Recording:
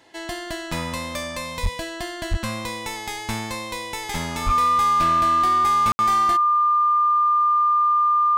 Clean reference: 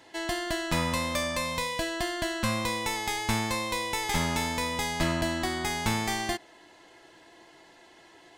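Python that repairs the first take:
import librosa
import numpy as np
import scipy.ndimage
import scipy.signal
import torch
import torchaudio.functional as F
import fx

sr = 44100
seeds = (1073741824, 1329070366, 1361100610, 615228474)

y = fx.fix_declip(x, sr, threshold_db=-15.0)
y = fx.notch(y, sr, hz=1200.0, q=30.0)
y = fx.highpass(y, sr, hz=140.0, slope=24, at=(1.62, 1.74), fade=0.02)
y = fx.highpass(y, sr, hz=140.0, slope=24, at=(2.3, 2.42), fade=0.02)
y = fx.highpass(y, sr, hz=140.0, slope=24, at=(4.45, 4.57), fade=0.02)
y = fx.fix_ambience(y, sr, seeds[0], print_start_s=0.0, print_end_s=0.5, start_s=5.92, end_s=5.99)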